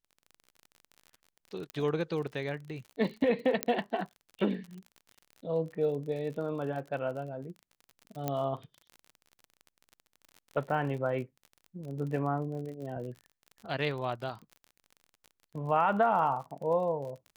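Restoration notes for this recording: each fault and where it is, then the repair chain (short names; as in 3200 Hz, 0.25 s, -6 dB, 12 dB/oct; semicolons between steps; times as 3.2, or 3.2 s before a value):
crackle 40/s -40 dBFS
1.7 pop -23 dBFS
3.63 pop -10 dBFS
8.28 pop -17 dBFS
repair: de-click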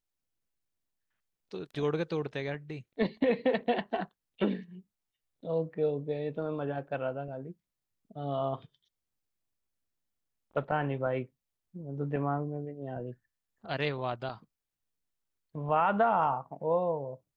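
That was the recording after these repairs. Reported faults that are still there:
1.7 pop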